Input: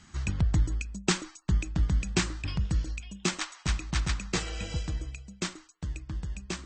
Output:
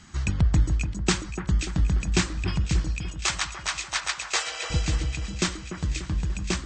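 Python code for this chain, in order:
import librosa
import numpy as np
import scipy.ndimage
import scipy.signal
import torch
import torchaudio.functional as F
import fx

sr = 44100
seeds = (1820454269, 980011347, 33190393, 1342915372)

y = fx.highpass(x, sr, hz=570.0, slope=24, at=(3.08, 4.7))
y = fx.rider(y, sr, range_db=3, speed_s=2.0)
y = fx.echo_split(y, sr, split_hz=1900.0, low_ms=293, high_ms=527, feedback_pct=52, wet_db=-9.0)
y = y * 10.0 ** (4.5 / 20.0)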